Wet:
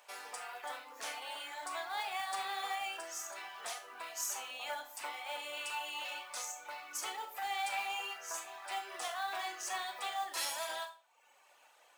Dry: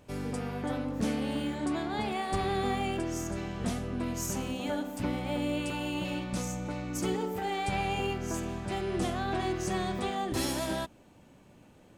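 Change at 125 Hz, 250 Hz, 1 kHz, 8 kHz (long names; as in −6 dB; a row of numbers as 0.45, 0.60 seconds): below −40 dB, −32.5 dB, −4.0 dB, −0.5 dB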